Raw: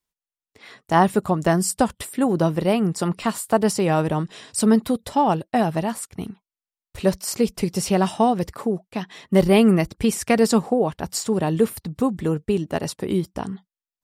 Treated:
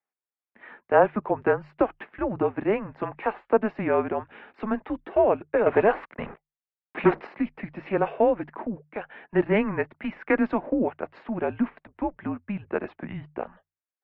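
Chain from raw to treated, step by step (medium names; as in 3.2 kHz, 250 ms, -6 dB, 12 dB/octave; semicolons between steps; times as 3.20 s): hum notches 60/120/180/240/300/360 Hz; 5.66–7.27 s: waveshaping leveller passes 3; mistuned SSB -210 Hz 490–2500 Hz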